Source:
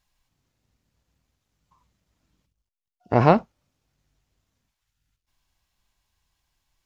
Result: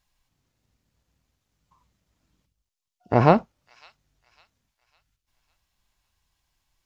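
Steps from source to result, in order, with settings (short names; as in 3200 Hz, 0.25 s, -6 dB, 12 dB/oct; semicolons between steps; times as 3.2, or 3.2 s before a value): thin delay 0.553 s, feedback 39%, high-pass 3900 Hz, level -11 dB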